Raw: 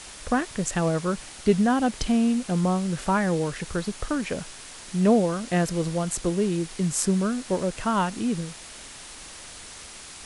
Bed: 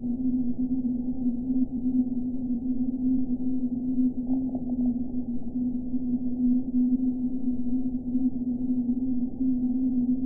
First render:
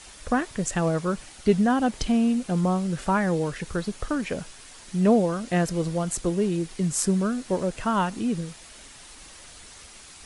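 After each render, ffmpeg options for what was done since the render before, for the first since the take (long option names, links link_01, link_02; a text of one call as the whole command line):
ffmpeg -i in.wav -af "afftdn=noise_reduction=6:noise_floor=-43" out.wav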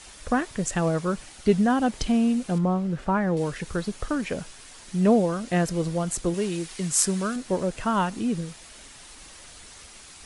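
ffmpeg -i in.wav -filter_complex "[0:a]asettb=1/sr,asplit=3[link_01][link_02][link_03];[link_01]atrim=end=2.584[link_04];[link_02]atrim=start=2.58:end=3.37,asetpts=PTS-STARTPTS,afade=type=in:duration=0.004:curve=qsin,afade=type=out:start_time=0.786:duration=0.004:curve=qsin,lowpass=frequency=1600:poles=1[link_05];[link_03]atrim=start=3.366[link_06];[link_04][link_05]acrossfade=duration=0.004:curve1=hsin:curve2=qsin[link_07];[link_07][link_06]acrossfade=duration=0.004:curve1=qsin:curve2=hsin,asettb=1/sr,asplit=3[link_08][link_09][link_10];[link_08]atrim=end=6.344[link_11];[link_09]atrim=start=6.34:end=7.36,asetpts=PTS-STARTPTS,afade=type=in:duration=0.004:curve=qsin,afade=type=out:start_time=1.016:duration=0.004:curve=qsin,tiltshelf=frequency=660:gain=-5[link_12];[link_10]atrim=start=7.356[link_13];[link_11][link_12]acrossfade=duration=0.004:curve1=hsin:curve2=qsin[link_14];[link_14][link_13]acrossfade=duration=0.004:curve1=qsin:curve2=hsin" out.wav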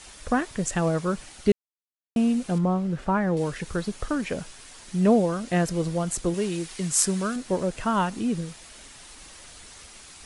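ffmpeg -i in.wav -filter_complex "[0:a]asplit=3[link_01][link_02][link_03];[link_01]atrim=end=1.52,asetpts=PTS-STARTPTS,afade=type=out:start_time=1.516:duration=0.004:curve=hsin[link_04];[link_02]atrim=start=1.52:end=2.16,asetpts=PTS-STARTPTS,volume=0[link_05];[link_03]atrim=start=2.16,asetpts=PTS-STARTPTS,afade=type=in:duration=0.004:curve=hsin[link_06];[link_04][link_05][link_06]concat=n=3:v=0:a=1" out.wav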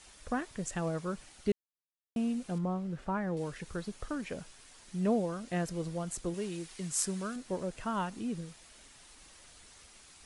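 ffmpeg -i in.wav -af "volume=-10dB" out.wav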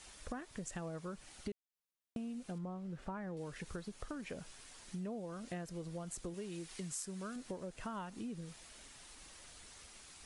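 ffmpeg -i in.wav -af "acompressor=threshold=-41dB:ratio=6" out.wav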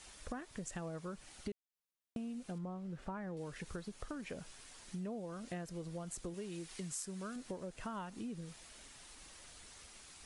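ffmpeg -i in.wav -af anull out.wav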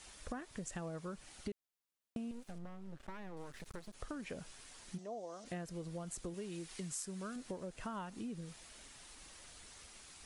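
ffmpeg -i in.wav -filter_complex "[0:a]asettb=1/sr,asplit=3[link_01][link_02][link_03];[link_01]atrim=end=2.314[link_04];[link_02]atrim=start=2.31:end=3.94,asetpts=PTS-STARTPTS,afade=type=in:duration=0.004:curve=qsin,afade=type=out:start_time=1.626:duration=0.004:curve=qsin,aeval=exprs='max(val(0),0)':channel_layout=same[link_05];[link_03]atrim=start=3.936[link_06];[link_04][link_05]acrossfade=duration=0.004:curve1=hsin:curve2=qsin[link_07];[link_07][link_06]acrossfade=duration=0.004:curve1=qsin:curve2=hsin,asplit=3[link_08][link_09][link_10];[link_08]afade=type=out:start_time=4.97:duration=0.02[link_11];[link_09]highpass=400,equalizer=frequency=690:width_type=q:width=4:gain=7,equalizer=frequency=1500:width_type=q:width=4:gain=-9,equalizer=frequency=2500:width_type=q:width=4:gain=-8,equalizer=frequency=6000:width_type=q:width=4:gain=8,lowpass=frequency=8400:width=0.5412,lowpass=frequency=8400:width=1.3066,afade=type=in:start_time=4.97:duration=0.02,afade=type=out:start_time=5.44:duration=0.02[link_12];[link_10]afade=type=in:start_time=5.44:duration=0.02[link_13];[link_11][link_12][link_13]amix=inputs=3:normalize=0" out.wav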